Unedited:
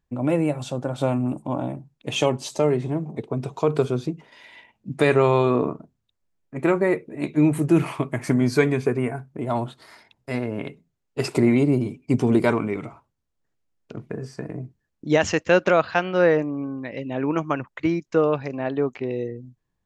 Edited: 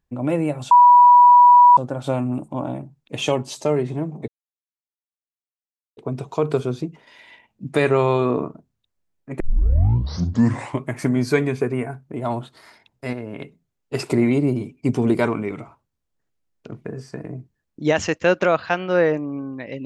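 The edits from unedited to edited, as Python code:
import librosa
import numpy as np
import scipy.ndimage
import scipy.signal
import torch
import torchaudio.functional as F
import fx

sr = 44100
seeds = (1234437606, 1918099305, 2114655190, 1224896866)

y = fx.edit(x, sr, fx.insert_tone(at_s=0.71, length_s=1.06, hz=976.0, db=-6.5),
    fx.insert_silence(at_s=3.22, length_s=1.69),
    fx.tape_start(start_s=6.65, length_s=1.46),
    fx.clip_gain(start_s=10.38, length_s=0.26, db=-4.0), tone=tone)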